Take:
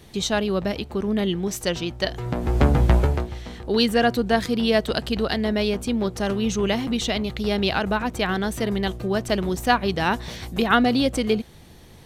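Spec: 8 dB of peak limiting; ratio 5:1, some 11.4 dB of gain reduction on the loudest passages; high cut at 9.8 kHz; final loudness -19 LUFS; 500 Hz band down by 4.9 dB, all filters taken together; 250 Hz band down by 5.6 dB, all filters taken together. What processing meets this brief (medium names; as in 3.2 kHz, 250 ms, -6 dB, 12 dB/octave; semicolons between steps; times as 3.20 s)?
low-pass 9.8 kHz; peaking EQ 250 Hz -6 dB; peaking EQ 500 Hz -4.5 dB; compression 5:1, threshold -26 dBFS; trim +13 dB; peak limiter -7.5 dBFS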